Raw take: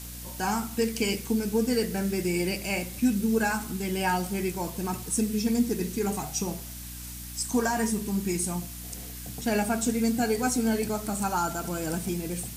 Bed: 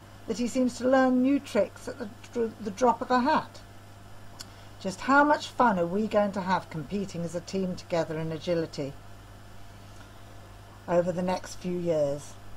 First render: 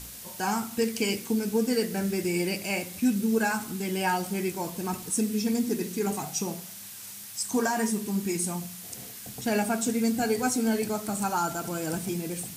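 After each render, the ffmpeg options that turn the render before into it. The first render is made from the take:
-af "bandreject=f=60:t=h:w=4,bandreject=f=120:t=h:w=4,bandreject=f=180:t=h:w=4,bandreject=f=240:t=h:w=4,bandreject=f=300:t=h:w=4"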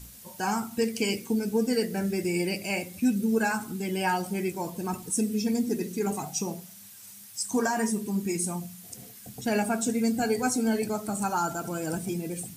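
-af "afftdn=nr=8:nf=-43"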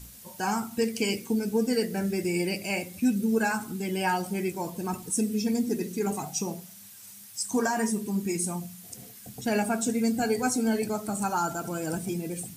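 -af anull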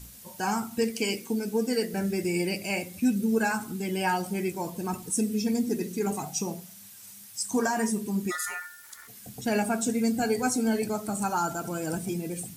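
-filter_complex "[0:a]asettb=1/sr,asplit=3[a][b][c];[a]atrim=end=0.904[d];[b]atrim=start=0.9:end=1.94,asetpts=PTS-STARTPTS,afade=t=in:d=0.004:c=qsin,afade=t=out:st=1.036:d=0.004:c=qsin,equalizer=f=74:t=o:w=1.8:g=-11[e];[c]atrim=start=1.936[f];[d][e]acrossfade=d=0.004:c1=hsin:c2=qsin[g];[g][f]acrossfade=d=0.004:c1=qsin:c2=hsin,asplit=3[h][i][j];[h]afade=t=out:st=8.3:d=0.02[k];[i]aeval=exprs='val(0)*sin(2*PI*1600*n/s)':c=same,afade=t=in:st=8.3:d=0.02,afade=t=out:st=9.07:d=0.02[l];[j]afade=t=in:st=9.07:d=0.02[m];[k][l][m]amix=inputs=3:normalize=0"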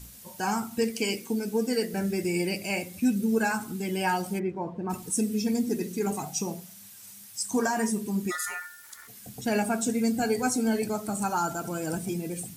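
-filter_complex "[0:a]asplit=3[a][b][c];[a]afade=t=out:st=4.38:d=0.02[d];[b]lowpass=1.5k,afade=t=in:st=4.38:d=0.02,afade=t=out:st=4.89:d=0.02[e];[c]afade=t=in:st=4.89:d=0.02[f];[d][e][f]amix=inputs=3:normalize=0"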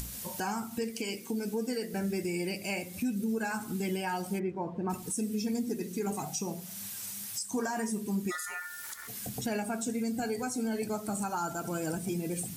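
-af "acompressor=mode=upward:threshold=-31dB:ratio=2.5,alimiter=limit=-24dB:level=0:latency=1:release=297"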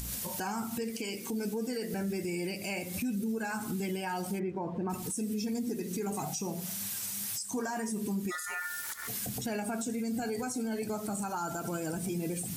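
-af "acontrast=78,alimiter=level_in=2.5dB:limit=-24dB:level=0:latency=1:release=163,volume=-2.5dB"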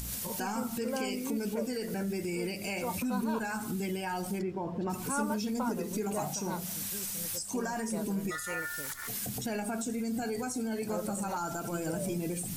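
-filter_complex "[1:a]volume=-14dB[a];[0:a][a]amix=inputs=2:normalize=0"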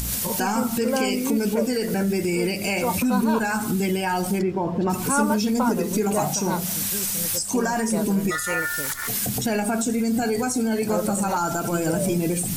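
-af "volume=11dB"

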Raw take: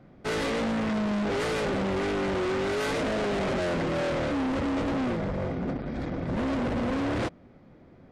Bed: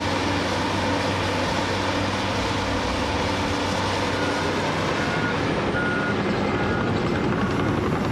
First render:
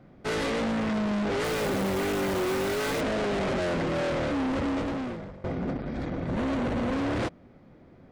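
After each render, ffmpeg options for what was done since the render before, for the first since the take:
-filter_complex "[0:a]asettb=1/sr,asplit=3[a][b][c];[a]atrim=end=1.444[d];[b]atrim=start=1.44:end=3.01,asetpts=PTS-STARTPTS,afade=t=in:d=0.004:c=qsin,afade=t=out:st=1.566:d=0.004:c=qsin,acrusher=bits=7:dc=4:mix=0:aa=0.000001[e];[c]atrim=start=3.006[f];[d][e]acrossfade=d=0.004:c1=hsin:c2=qsin[g];[g][f]acrossfade=d=0.004:c1=qsin:c2=hsin,asettb=1/sr,asplit=3[h][i][j];[h]atrim=end=6.044[k];[i]atrim=start=6.04:end=6.92,asetpts=PTS-STARTPTS,afade=t=in:d=0.004:c=qsin,afade=t=out:st=0.876:d=0.004:c=qsin,bandreject=f=5.1k:w=13[l];[j]atrim=start=6.916[m];[k][l]acrossfade=d=0.004:c1=hsin:c2=qsin[n];[n][m]acrossfade=d=0.004:c1=qsin:c2=hsin,asplit=2[o][p];[o]atrim=end=5.44,asetpts=PTS-STARTPTS,afade=t=out:st=4.69:d=0.75:silence=0.1[q];[p]atrim=start=5.44,asetpts=PTS-STARTPTS,afade=t=in:d=0.004:c=hsin:silence=0.1[r];[q][r]concat=n=2:v=0:a=1"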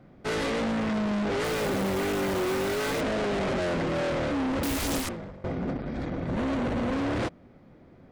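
-filter_complex "[0:a]asettb=1/sr,asplit=3[a][b][c];[a]atrim=end=4.634[d];[b]atrim=start=4.63:end=5.09,asetpts=PTS-STARTPTS,afade=t=in:d=0.004:c=qsin,afade=t=out:st=0.456:d=0.004:c=qsin,aeval=exprs='0.0531*sin(PI/2*7.94*val(0)/0.0531)':c=same[e];[c]atrim=start=5.086[f];[d][e]acrossfade=d=0.004:c1=hsin:c2=qsin[g];[g][f]acrossfade=d=0.004:c1=qsin:c2=hsin"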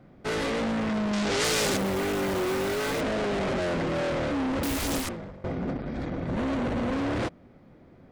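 -filter_complex "[0:a]asettb=1/sr,asplit=3[a][b][c];[a]atrim=end=1.134[d];[b]atrim=start=1.13:end=1.77,asetpts=PTS-STARTPTS,afade=t=in:d=0.004:c=qsin,afade=t=out:st=0.636:d=0.004:c=qsin,equalizer=f=6.5k:w=0.46:g=13.5[e];[c]atrim=start=1.766[f];[d][e]acrossfade=d=0.004:c1=hsin:c2=qsin[g];[g][f]acrossfade=d=0.004:c1=qsin:c2=hsin"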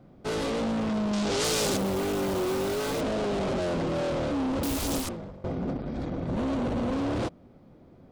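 -af "equalizer=f=1.9k:w=1.5:g=-7.5"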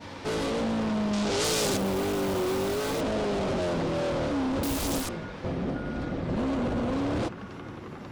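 -filter_complex "[1:a]volume=-18dB[a];[0:a][a]amix=inputs=2:normalize=0"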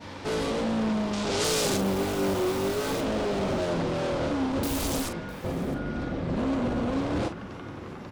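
-filter_complex "[0:a]asplit=2[a][b];[b]adelay=41,volume=-9dB[c];[a][c]amix=inputs=2:normalize=0,aecho=1:1:656:0.1"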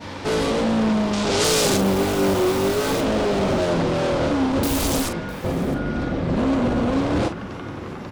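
-af "volume=7dB"

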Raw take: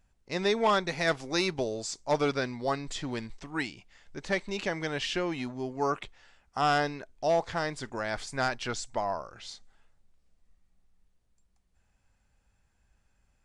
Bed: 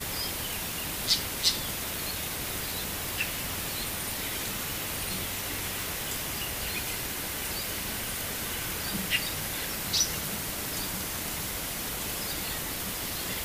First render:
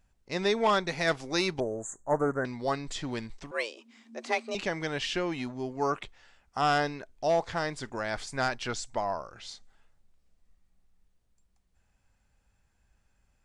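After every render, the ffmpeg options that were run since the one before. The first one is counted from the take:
-filter_complex "[0:a]asettb=1/sr,asplit=3[a][b][c];[a]atrim=end=1.604[d];[b]atrim=start=1.6:end=2.45,asetpts=PTS-STARTPTS,afade=t=in:d=0.004:c=qsin,afade=t=out:st=0.846:d=0.004:c=qsin,asuperstop=centerf=3600:order=20:qfactor=0.77[e];[c]atrim=start=2.446[f];[d][e]acrossfade=d=0.004:c1=hsin:c2=qsin[g];[g][f]acrossfade=d=0.004:c1=qsin:c2=hsin,asettb=1/sr,asplit=3[h][i][j];[h]atrim=end=3.514[k];[i]atrim=start=3.51:end=4.55,asetpts=PTS-STARTPTS,afade=t=in:d=0.004:c=qsin,afade=t=out:st=1.036:d=0.004:c=qsin,afreqshift=220[l];[j]atrim=start=4.546[m];[k][l]acrossfade=d=0.004:c1=hsin:c2=qsin[n];[n][m]acrossfade=d=0.004:c1=qsin:c2=hsin"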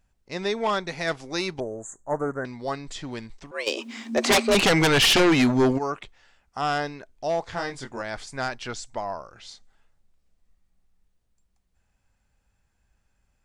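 -filter_complex "[0:a]asplit=3[a][b][c];[a]afade=t=out:st=3.66:d=0.02[d];[b]aeval=exprs='0.2*sin(PI/2*5.62*val(0)/0.2)':c=same,afade=t=in:st=3.66:d=0.02,afade=t=out:st=5.77:d=0.02[e];[c]afade=t=in:st=5.77:d=0.02[f];[d][e][f]amix=inputs=3:normalize=0,asettb=1/sr,asplit=3[g][h][i];[g]atrim=end=7.504[j];[h]atrim=start=7.5:end=8.02,asetpts=PTS-STARTPTS,afade=t=in:d=0.004:c=qsin,afade=t=out:st=0.516:d=0.004:c=qsin,asplit=2[k][l];[l]adelay=22,volume=-4dB[m];[k][m]amix=inputs=2:normalize=0,atrim=end_sample=22932[n];[i]atrim=start=8.016[o];[j][n]acrossfade=d=0.004:c1=hsin:c2=qsin[p];[p][o]acrossfade=d=0.004:c1=qsin:c2=hsin"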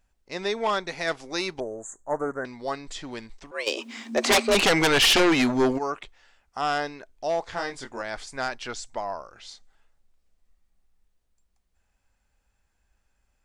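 -af "equalizer=f=130:w=0.93:g=-8"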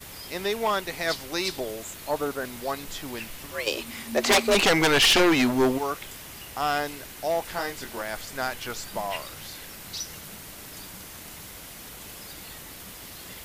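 -filter_complex "[1:a]volume=-8.5dB[a];[0:a][a]amix=inputs=2:normalize=0"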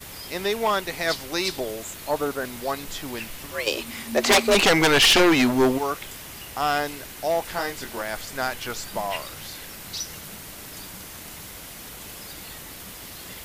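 -af "volume=2.5dB"

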